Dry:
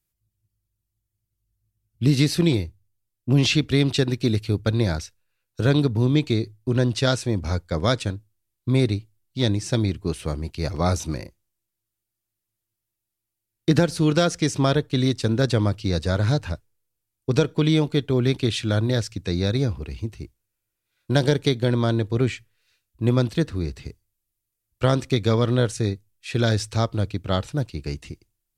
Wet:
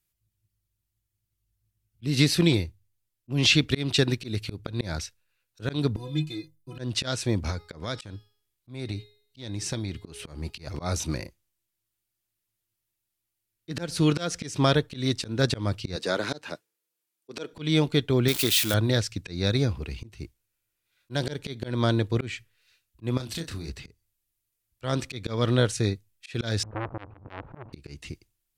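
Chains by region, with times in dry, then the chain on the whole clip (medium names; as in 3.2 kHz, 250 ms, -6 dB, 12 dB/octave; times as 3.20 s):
5.96–6.79 s: treble shelf 9.5 kHz +12 dB + inharmonic resonator 150 Hz, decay 0.3 s, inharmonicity 0.03
7.50–10.67 s: de-hum 416.7 Hz, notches 13 + compression 10:1, threshold -24 dBFS
15.96–17.53 s: Bessel high-pass 280 Hz, order 4 + peaking EQ 370 Hz +4 dB 0.91 oct
18.28–18.74 s: zero-crossing glitches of -18 dBFS + peaking EQ 60 Hz -10.5 dB 2.8 oct
23.17–23.69 s: treble shelf 4.5 kHz +12 dB + compression 8:1, threshold -30 dBFS + doubling 30 ms -6.5 dB
26.63–27.73 s: one-bit delta coder 64 kbps, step -31.5 dBFS + low-pass 1.1 kHz 24 dB/octave + transformer saturation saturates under 1.5 kHz
whole clip: treble shelf 2.2 kHz +10 dB; slow attack 201 ms; tone controls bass 0 dB, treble -7 dB; trim -2 dB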